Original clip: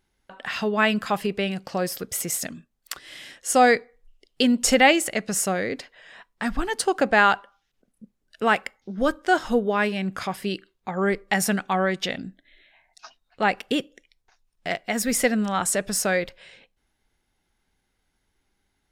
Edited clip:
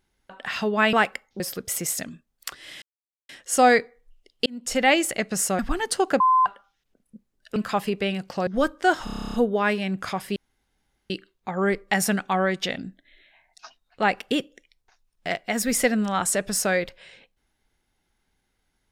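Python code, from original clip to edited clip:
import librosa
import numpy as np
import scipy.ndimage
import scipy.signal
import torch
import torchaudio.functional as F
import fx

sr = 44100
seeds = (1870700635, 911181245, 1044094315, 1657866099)

y = fx.edit(x, sr, fx.swap(start_s=0.93, length_s=0.91, other_s=8.44, other_length_s=0.47),
    fx.insert_silence(at_s=3.26, length_s=0.47),
    fx.fade_in_span(start_s=4.43, length_s=0.59),
    fx.cut(start_s=5.56, length_s=0.91),
    fx.bleep(start_s=7.08, length_s=0.26, hz=1030.0, db=-14.5),
    fx.stutter(start_s=9.48, slice_s=0.03, count=11),
    fx.insert_room_tone(at_s=10.5, length_s=0.74), tone=tone)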